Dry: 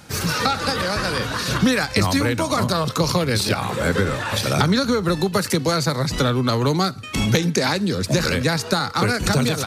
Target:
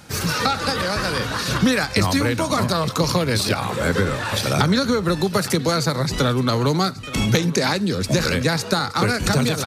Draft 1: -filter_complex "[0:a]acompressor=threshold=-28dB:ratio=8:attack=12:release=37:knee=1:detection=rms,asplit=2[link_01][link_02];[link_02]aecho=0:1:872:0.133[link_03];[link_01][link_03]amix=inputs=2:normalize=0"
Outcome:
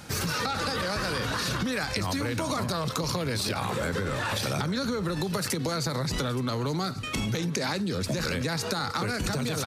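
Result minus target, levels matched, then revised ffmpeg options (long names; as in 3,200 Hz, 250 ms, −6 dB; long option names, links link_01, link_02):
downward compressor: peak gain reduction +14.5 dB
-filter_complex "[0:a]asplit=2[link_01][link_02];[link_02]aecho=0:1:872:0.133[link_03];[link_01][link_03]amix=inputs=2:normalize=0"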